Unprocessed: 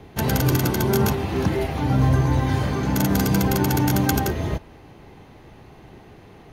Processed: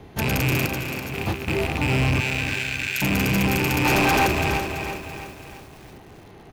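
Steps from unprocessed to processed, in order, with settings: rattling part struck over -24 dBFS, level -10 dBFS; 0.66–1.48 negative-ratio compressor -28 dBFS, ratio -0.5; 2.2–3.02 elliptic high-pass 1500 Hz; soft clip -16.5 dBFS, distortion -12 dB; 3.85–4.27 overdrive pedal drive 27 dB, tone 3300 Hz, clips at -12 dBFS; speakerphone echo 0.4 s, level -7 dB; lo-fi delay 0.333 s, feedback 55%, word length 7-bit, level -8 dB

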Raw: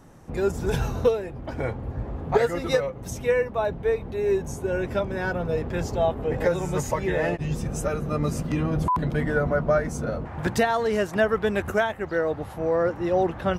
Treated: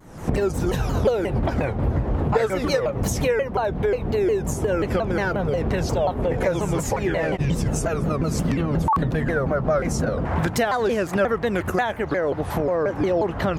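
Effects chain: recorder AGC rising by 71 dB/s; shaped vibrato saw down 5.6 Hz, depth 250 cents

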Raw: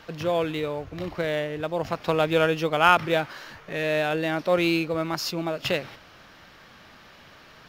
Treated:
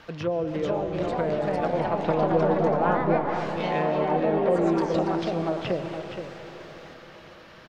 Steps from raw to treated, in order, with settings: treble ducked by the level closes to 580 Hz, closed at -21.5 dBFS; high shelf 4700 Hz -5.5 dB; echo 0.469 s -8.5 dB; on a send at -7.5 dB: reverb RT60 5.1 s, pre-delay 85 ms; on the sum: echoes that change speed 0.475 s, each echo +3 st, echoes 3

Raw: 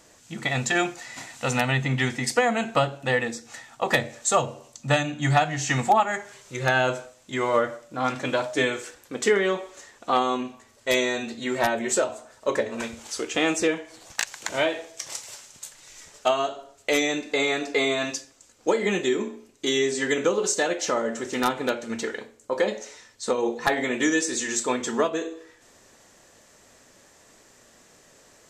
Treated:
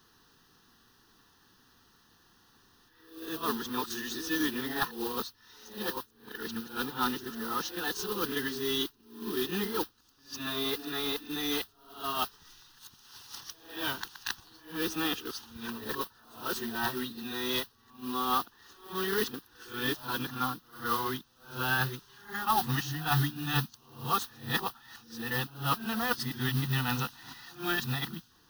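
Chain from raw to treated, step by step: whole clip reversed; modulation noise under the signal 10 dB; fixed phaser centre 2200 Hz, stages 6; gain -4 dB

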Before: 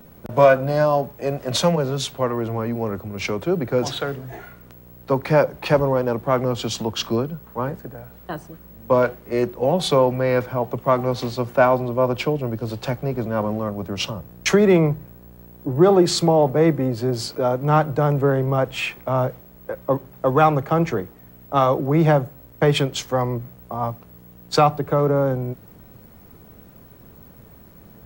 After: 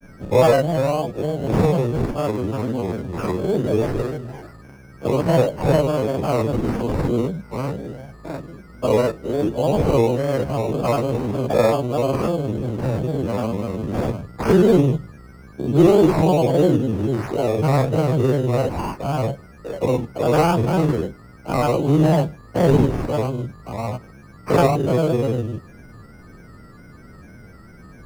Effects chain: spectral dilation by 0.12 s; resonant high shelf 6700 Hz -14 dB, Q 1.5; whine 8800 Hz -38 dBFS; sample-rate reducer 3400 Hz, jitter 0%; grains, spray 20 ms, pitch spread up and down by 3 st; tilt shelf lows +8 dB; gain -7 dB

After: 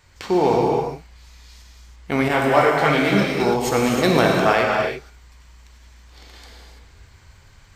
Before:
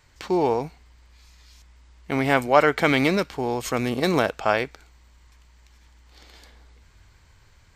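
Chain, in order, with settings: non-linear reverb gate 0.36 s flat, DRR -1.5 dB; 2.28–3.4 detuned doubles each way 20 cents; gain +2.5 dB

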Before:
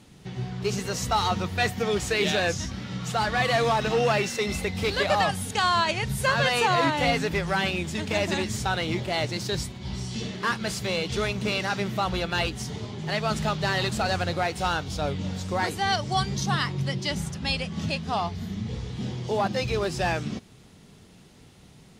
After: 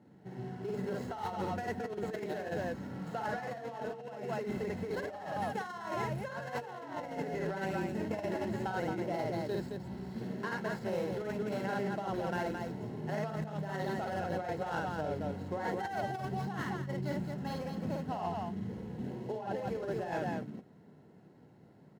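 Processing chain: median filter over 15 samples; HPF 120 Hz 12 dB/oct; high shelf 2400 Hz -8 dB; loudspeakers at several distances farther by 18 m -2 dB, 75 m -5 dB; negative-ratio compressor -27 dBFS, ratio -0.5; notch comb 1200 Hz; gain -7.5 dB

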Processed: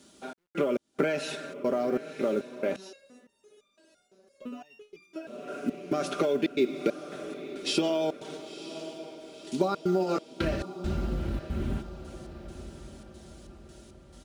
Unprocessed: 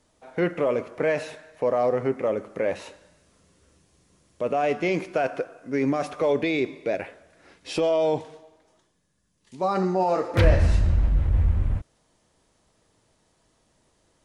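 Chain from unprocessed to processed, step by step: HPF 55 Hz 24 dB/oct; resonant high shelf 2400 Hz +7.5 dB, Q 1.5; comb 5.1 ms, depth 65%; compressor 8:1, threshold -30 dBFS, peak gain reduction 15.5 dB; small resonant body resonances 290/1400 Hz, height 15 dB, ringing for 30 ms; step gate "xxx..xx..xxxxx." 137 bpm -60 dB; companded quantiser 8-bit; diffused feedback echo 0.98 s, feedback 50%, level -12.5 dB; 2.76–5.27 stepped resonator 5.9 Hz 190–1200 Hz; gain +1.5 dB

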